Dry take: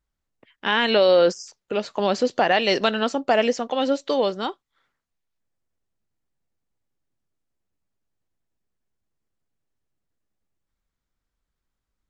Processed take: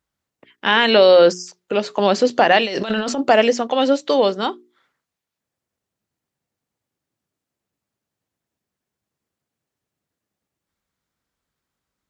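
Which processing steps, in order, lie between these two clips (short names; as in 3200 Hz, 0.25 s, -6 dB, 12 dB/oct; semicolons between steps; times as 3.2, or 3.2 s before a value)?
HPF 98 Hz 12 dB/oct; notches 60/120/180/240/300/360/420 Hz; 2.63–3.29 negative-ratio compressor -28 dBFS, ratio -1; gain +5.5 dB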